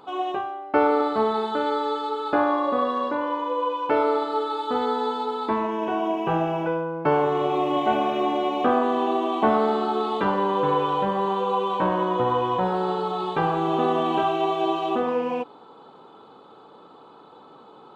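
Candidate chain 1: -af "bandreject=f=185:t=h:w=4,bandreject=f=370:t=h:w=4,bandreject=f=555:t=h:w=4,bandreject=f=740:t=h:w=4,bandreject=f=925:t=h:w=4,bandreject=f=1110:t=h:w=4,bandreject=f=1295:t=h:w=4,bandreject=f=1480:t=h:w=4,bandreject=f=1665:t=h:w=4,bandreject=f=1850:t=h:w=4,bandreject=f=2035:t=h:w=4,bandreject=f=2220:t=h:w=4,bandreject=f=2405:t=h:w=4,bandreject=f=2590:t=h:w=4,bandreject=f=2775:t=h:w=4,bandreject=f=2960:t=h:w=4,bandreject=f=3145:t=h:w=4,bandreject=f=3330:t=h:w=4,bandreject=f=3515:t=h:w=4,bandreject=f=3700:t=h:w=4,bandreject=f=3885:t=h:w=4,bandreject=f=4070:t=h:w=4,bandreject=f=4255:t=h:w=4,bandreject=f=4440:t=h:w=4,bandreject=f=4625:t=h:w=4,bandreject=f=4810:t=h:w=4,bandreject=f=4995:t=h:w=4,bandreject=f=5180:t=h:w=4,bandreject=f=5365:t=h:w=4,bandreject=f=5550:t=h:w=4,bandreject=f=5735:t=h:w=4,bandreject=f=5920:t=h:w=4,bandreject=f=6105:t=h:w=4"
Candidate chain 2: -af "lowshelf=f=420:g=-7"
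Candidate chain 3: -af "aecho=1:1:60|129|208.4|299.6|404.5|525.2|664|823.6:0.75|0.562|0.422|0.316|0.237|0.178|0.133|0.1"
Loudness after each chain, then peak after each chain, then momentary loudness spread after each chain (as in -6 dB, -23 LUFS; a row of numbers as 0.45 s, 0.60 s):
-24.0 LUFS, -26.0 LUFS, -20.5 LUFS; -7.0 dBFS, -9.0 dBFS, -6.0 dBFS; 5 LU, 4 LU, 5 LU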